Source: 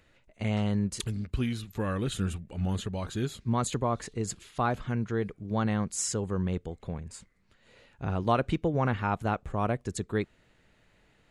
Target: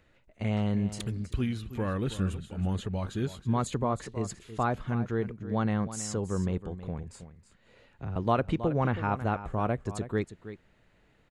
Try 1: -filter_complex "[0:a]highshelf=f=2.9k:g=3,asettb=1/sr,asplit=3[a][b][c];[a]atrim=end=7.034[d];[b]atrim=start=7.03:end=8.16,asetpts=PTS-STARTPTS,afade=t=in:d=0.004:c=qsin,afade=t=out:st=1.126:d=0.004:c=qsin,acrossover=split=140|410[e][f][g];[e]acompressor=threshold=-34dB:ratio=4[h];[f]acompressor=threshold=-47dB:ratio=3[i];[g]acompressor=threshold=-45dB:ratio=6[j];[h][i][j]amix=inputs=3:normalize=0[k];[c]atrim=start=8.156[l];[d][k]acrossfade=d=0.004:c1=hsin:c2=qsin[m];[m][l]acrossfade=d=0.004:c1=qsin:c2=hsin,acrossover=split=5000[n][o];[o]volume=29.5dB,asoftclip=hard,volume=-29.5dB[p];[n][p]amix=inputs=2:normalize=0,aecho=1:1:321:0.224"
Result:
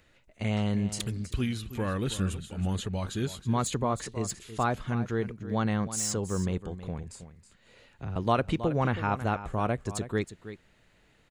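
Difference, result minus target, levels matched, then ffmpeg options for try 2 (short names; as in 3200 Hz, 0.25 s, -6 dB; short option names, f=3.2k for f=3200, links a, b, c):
8000 Hz band +6.0 dB
-filter_complex "[0:a]highshelf=f=2.9k:g=-6.5,asettb=1/sr,asplit=3[a][b][c];[a]atrim=end=7.034[d];[b]atrim=start=7.03:end=8.16,asetpts=PTS-STARTPTS,afade=t=in:d=0.004:c=qsin,afade=t=out:st=1.126:d=0.004:c=qsin,acrossover=split=140|410[e][f][g];[e]acompressor=threshold=-34dB:ratio=4[h];[f]acompressor=threshold=-47dB:ratio=3[i];[g]acompressor=threshold=-45dB:ratio=6[j];[h][i][j]amix=inputs=3:normalize=0[k];[c]atrim=start=8.156[l];[d][k]acrossfade=d=0.004:c1=hsin:c2=qsin[m];[m][l]acrossfade=d=0.004:c1=qsin:c2=hsin,acrossover=split=5000[n][o];[o]volume=29.5dB,asoftclip=hard,volume=-29.5dB[p];[n][p]amix=inputs=2:normalize=0,aecho=1:1:321:0.224"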